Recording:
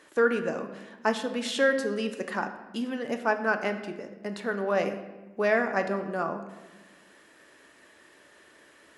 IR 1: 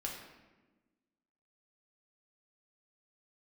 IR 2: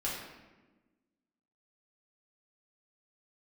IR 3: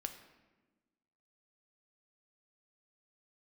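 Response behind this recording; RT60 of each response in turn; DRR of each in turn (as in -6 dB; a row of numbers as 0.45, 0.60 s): 3; 1.2, 1.2, 1.2 s; -2.0, -6.5, 6.0 dB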